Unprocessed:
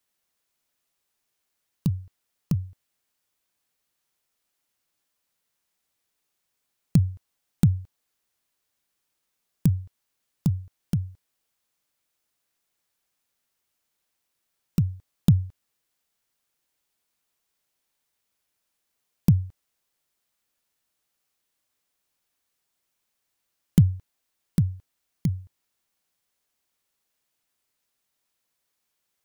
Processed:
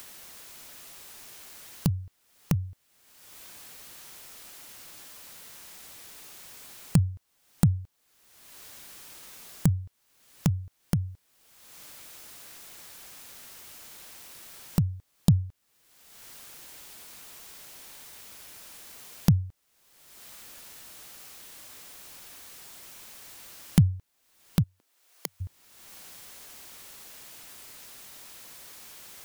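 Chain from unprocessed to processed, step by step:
0:24.62–0:25.40: high-pass filter 200 Hz → 550 Hz 24 dB per octave
upward compression, threshold −18 dBFS
level −2.5 dB

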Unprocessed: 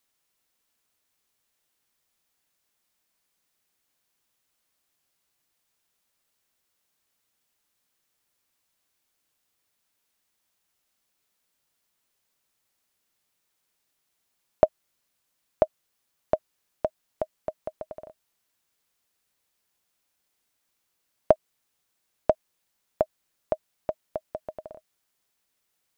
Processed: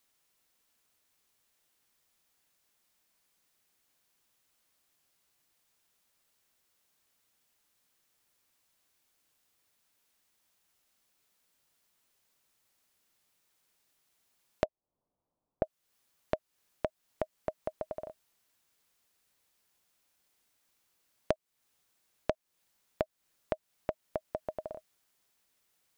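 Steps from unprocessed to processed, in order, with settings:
0:14.65–0:15.63: inverse Chebyshev low-pass filter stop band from 2,400 Hz, stop band 50 dB
downward compressor 3 to 1, threshold −33 dBFS, peak gain reduction 15.5 dB
level +1.5 dB

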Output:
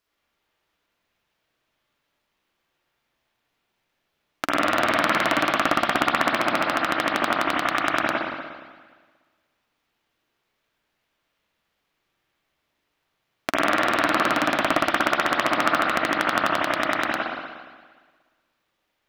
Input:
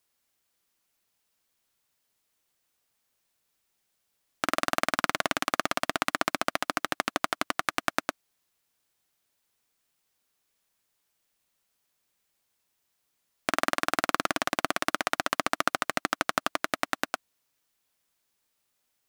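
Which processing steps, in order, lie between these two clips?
running median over 5 samples
convolution reverb RT60 1.5 s, pre-delay 59 ms, DRR −5 dB
level +1.5 dB

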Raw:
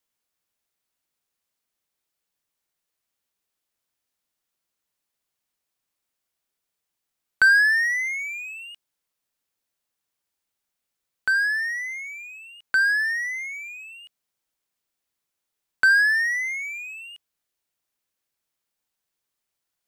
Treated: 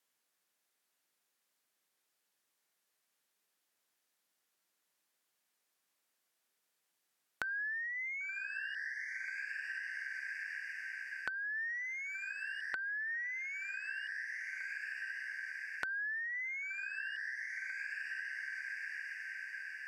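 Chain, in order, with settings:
high-pass filter 200 Hz 12 dB per octave
feedback delay with all-pass diffusion 1,074 ms, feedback 52%, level −15 dB
treble cut that deepens with the level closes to 1,200 Hz, closed at −20.5 dBFS
downward compressor 8 to 1, threshold −42 dBFS, peak gain reduction 24 dB
parametric band 1,700 Hz +3.5 dB 0.49 octaves
level +1 dB

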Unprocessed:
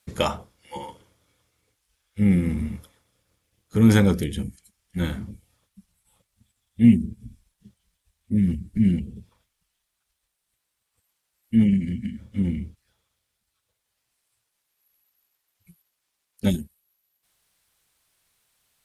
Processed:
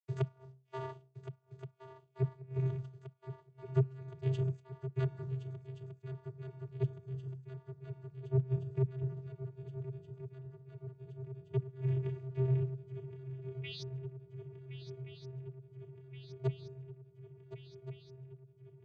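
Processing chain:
downward expander −41 dBFS
low-shelf EQ 180 Hz −6 dB
mains-hum notches 60/120/180/240/300/360/420/480/540 Hz
in parallel at +1 dB: downward compressor 12 to 1, threshold −29 dBFS, peak gain reduction 16.5 dB
on the sum: half-wave rectification
sound drawn into the spectrogram rise, 0:13.63–0:13.83, 2,400–5,000 Hz −33 dBFS
soft clipping −5.5 dBFS, distortion −27 dB
gate with flip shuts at −13 dBFS, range −29 dB
channel vocoder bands 16, square 131 Hz
feedback echo with a long and a short gap by turns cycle 1,424 ms, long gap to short 3 to 1, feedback 71%, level −12 dB

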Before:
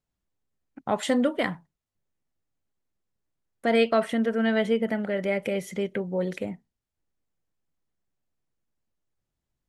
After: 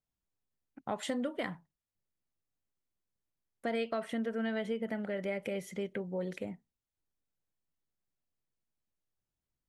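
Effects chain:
downward compressor, threshold −23 dBFS, peak gain reduction 6.5 dB
level −7.5 dB

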